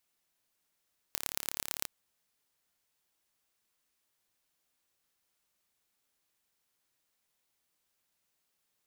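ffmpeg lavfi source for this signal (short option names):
-f lavfi -i "aevalsrc='0.631*eq(mod(n,1239),0)*(0.5+0.5*eq(mod(n,4956),0))':d=0.73:s=44100"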